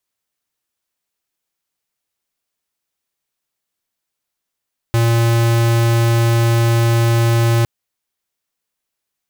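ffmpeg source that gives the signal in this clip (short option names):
-f lavfi -i "aevalsrc='0.211*(2*lt(mod(116*t,1),0.5)-1)':d=2.71:s=44100"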